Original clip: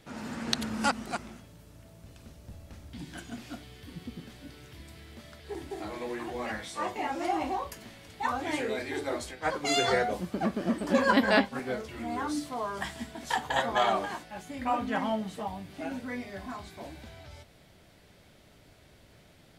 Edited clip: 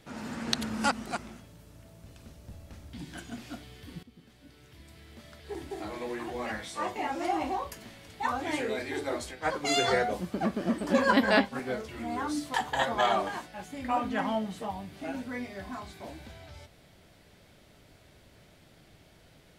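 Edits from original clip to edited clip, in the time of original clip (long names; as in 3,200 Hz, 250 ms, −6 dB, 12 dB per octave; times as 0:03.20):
0:04.03–0:05.56: fade in, from −15.5 dB
0:12.54–0:13.31: remove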